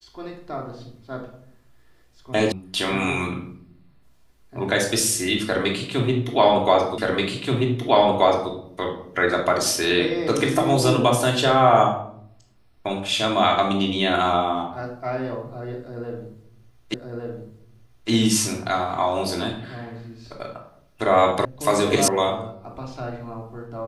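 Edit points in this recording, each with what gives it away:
0:02.52: cut off before it has died away
0:06.98: the same again, the last 1.53 s
0:16.94: the same again, the last 1.16 s
0:21.45: cut off before it has died away
0:22.08: cut off before it has died away

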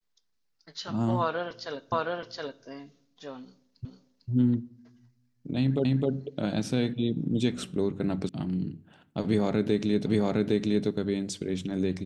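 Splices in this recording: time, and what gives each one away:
0:01.92: the same again, the last 0.72 s
0:03.85: the same again, the last 0.45 s
0:05.85: the same again, the last 0.26 s
0:08.29: cut off before it has died away
0:10.06: the same again, the last 0.81 s

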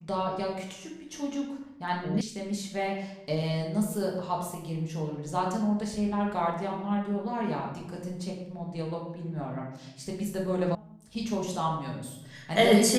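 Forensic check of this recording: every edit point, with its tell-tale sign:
0:02.21: cut off before it has died away
0:10.75: cut off before it has died away

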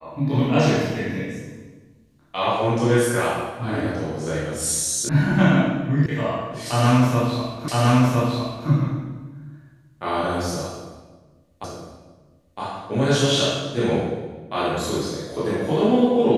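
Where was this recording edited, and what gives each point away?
0:05.09: cut off before it has died away
0:06.06: cut off before it has died away
0:07.68: the same again, the last 1.01 s
0:11.64: the same again, the last 0.96 s

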